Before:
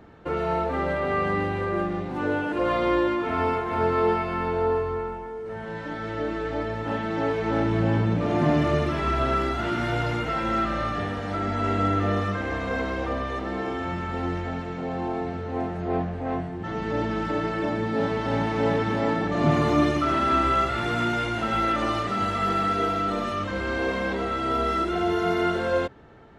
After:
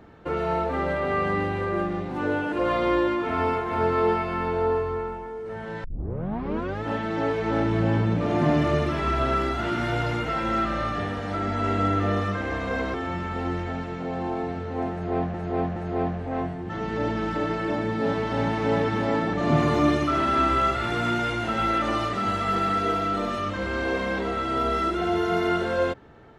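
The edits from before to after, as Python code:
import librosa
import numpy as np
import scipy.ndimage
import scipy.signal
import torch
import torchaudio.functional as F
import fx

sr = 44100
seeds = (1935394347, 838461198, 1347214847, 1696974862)

y = fx.edit(x, sr, fx.tape_start(start_s=5.84, length_s=0.99),
    fx.cut(start_s=12.94, length_s=0.78),
    fx.repeat(start_s=15.7, length_s=0.42, count=3), tone=tone)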